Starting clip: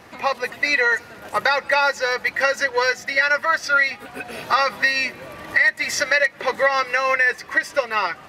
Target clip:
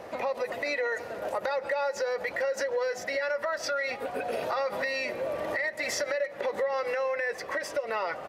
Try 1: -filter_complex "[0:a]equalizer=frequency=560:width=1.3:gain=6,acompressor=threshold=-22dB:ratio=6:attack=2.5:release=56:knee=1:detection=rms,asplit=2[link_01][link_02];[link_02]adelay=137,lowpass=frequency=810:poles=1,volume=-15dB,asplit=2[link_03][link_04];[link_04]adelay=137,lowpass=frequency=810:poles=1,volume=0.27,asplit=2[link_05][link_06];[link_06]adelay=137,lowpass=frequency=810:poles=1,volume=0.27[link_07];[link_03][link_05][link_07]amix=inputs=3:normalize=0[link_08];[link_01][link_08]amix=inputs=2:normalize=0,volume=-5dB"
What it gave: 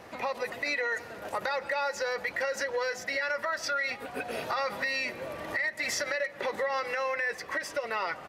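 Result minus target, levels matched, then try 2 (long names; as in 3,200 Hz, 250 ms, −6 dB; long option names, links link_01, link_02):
500 Hz band −3.5 dB
-filter_complex "[0:a]equalizer=frequency=560:width=1.3:gain=16,acompressor=threshold=-22dB:ratio=6:attack=2.5:release=56:knee=1:detection=rms,asplit=2[link_01][link_02];[link_02]adelay=137,lowpass=frequency=810:poles=1,volume=-15dB,asplit=2[link_03][link_04];[link_04]adelay=137,lowpass=frequency=810:poles=1,volume=0.27,asplit=2[link_05][link_06];[link_06]adelay=137,lowpass=frequency=810:poles=1,volume=0.27[link_07];[link_03][link_05][link_07]amix=inputs=3:normalize=0[link_08];[link_01][link_08]amix=inputs=2:normalize=0,volume=-5dB"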